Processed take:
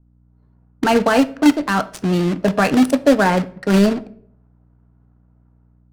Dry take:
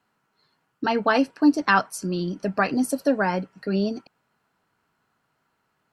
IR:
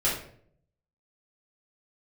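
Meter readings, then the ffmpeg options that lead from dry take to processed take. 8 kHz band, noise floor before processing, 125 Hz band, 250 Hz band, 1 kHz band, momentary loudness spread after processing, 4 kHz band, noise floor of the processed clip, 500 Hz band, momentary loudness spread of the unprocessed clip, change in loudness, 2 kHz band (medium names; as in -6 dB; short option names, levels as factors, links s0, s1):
+5.0 dB, -73 dBFS, +10.0 dB, +7.5 dB, +4.5 dB, 6 LU, +7.5 dB, -55 dBFS, +8.0 dB, 9 LU, +6.5 dB, +3.5 dB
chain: -filter_complex "[0:a]acrossover=split=380[s0][s1];[s0]acrusher=bits=2:mode=log:mix=0:aa=0.000001[s2];[s1]alimiter=limit=0.141:level=0:latency=1:release=24[s3];[s2][s3]amix=inputs=2:normalize=0,dynaudnorm=f=140:g=5:m=3.55,equalizer=f=340:w=4.4:g=-3.5,aeval=exprs='val(0)+0.00251*(sin(2*PI*60*n/s)+sin(2*PI*2*60*n/s)/2+sin(2*PI*3*60*n/s)/3+sin(2*PI*4*60*n/s)/4+sin(2*PI*5*60*n/s)/5)':c=same,adynamicsmooth=sensitivity=3:basefreq=500,asplit=2[s4][s5];[1:a]atrim=start_sample=2205[s6];[s5][s6]afir=irnorm=-1:irlink=0,volume=0.0668[s7];[s4][s7]amix=inputs=2:normalize=0"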